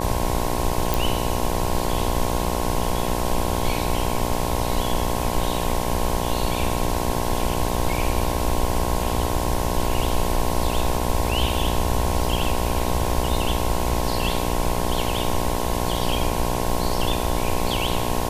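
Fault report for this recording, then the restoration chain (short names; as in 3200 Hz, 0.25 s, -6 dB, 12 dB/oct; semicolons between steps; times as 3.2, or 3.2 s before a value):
buzz 60 Hz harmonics 18 -26 dBFS
0.94 pop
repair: de-click; de-hum 60 Hz, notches 18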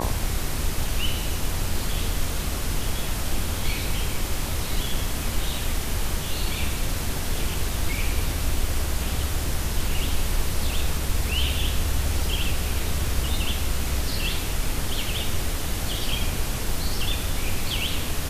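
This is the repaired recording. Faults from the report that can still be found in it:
none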